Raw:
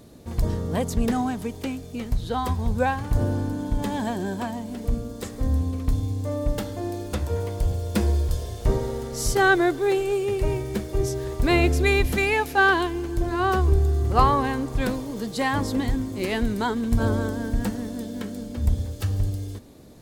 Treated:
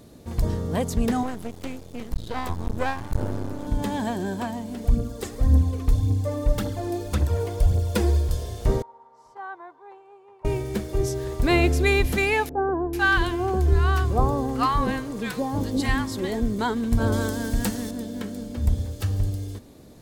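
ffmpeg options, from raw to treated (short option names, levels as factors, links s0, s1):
-filter_complex "[0:a]asettb=1/sr,asplit=3[s0][s1][s2];[s0]atrim=end=1.234[s3];[s1]atrim=start=1.23:end=3.67,asetpts=PTS-STARTPTS,afade=t=in:d=0.004:c=qsin,afade=t=out:st=2.436:d=0.004:c=qsin,aeval=exprs='max(val(0),0)':c=same[s4];[s2]atrim=start=3.666[s5];[s3][s4]acrossfade=d=0.004:c1=hsin:c2=qsin[s6];[s6][s5]acrossfade=d=0.004:c1=qsin:c2=hsin,asplit=3[s7][s8][s9];[s7]afade=t=out:st=4.83:d=0.02[s10];[s8]aphaser=in_gain=1:out_gain=1:delay=3:decay=0.5:speed=1.8:type=triangular,afade=t=in:st=4.83:d=0.02,afade=t=out:st=8.18:d=0.02[s11];[s9]afade=t=in:st=8.18:d=0.02[s12];[s10][s11][s12]amix=inputs=3:normalize=0,asettb=1/sr,asplit=3[s13][s14][s15];[s13]atrim=end=8.824[s16];[s14]atrim=start=8.82:end=10.45,asetpts=PTS-STARTPTS,afade=t=in:d=0.004:c=qsin,afade=t=out:st=1.626:d=0.004:c=qsin,bandpass=f=960:t=q:w=12[s17];[s15]atrim=start=10.446[s18];[s16][s17]acrossfade=d=0.004:c1=hsin:c2=qsin[s19];[s19][s18]acrossfade=d=0.004:c1=qsin:c2=hsin,asettb=1/sr,asplit=3[s20][s21][s22];[s20]atrim=end=12.494[s23];[s21]atrim=start=12.49:end=16.59,asetpts=PTS-STARTPTS,afade=t=in:d=0.004:c=qsin,afade=t=out:st=4.096:d=0.004:c=qsin,acrossover=split=870[s24][s25];[s25]adelay=440[s26];[s24][s26]amix=inputs=2:normalize=0,atrim=end_sample=180810[s27];[s22]atrim=start=16.586[s28];[s23][s27]acrossfade=d=0.004:c1=hsin:c2=qsin[s29];[s29][s28]acrossfade=d=0.004:c1=qsin:c2=hsin,asettb=1/sr,asplit=3[s30][s31][s32];[s30]atrim=end=17.124[s33];[s31]atrim=start=17.12:end=17.91,asetpts=PTS-STARTPTS,afade=t=in:d=0.004:c=qsin,afade=t=out:st=0.786:d=0.004:c=qsin,highshelf=f=2400:g=10[s34];[s32]atrim=start=17.906[s35];[s33][s34]acrossfade=d=0.004:c1=hsin:c2=qsin[s36];[s36][s35]acrossfade=d=0.004:c1=qsin:c2=hsin"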